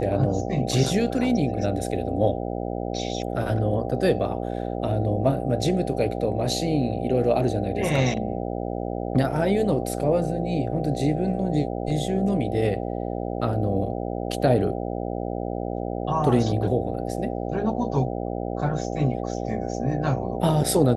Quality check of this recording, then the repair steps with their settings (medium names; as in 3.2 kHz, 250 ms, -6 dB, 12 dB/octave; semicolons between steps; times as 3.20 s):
buzz 60 Hz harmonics 13 -29 dBFS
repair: de-hum 60 Hz, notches 13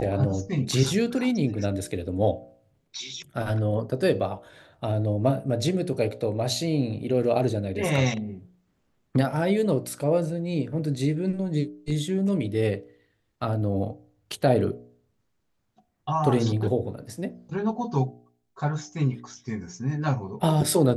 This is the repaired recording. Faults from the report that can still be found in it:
nothing left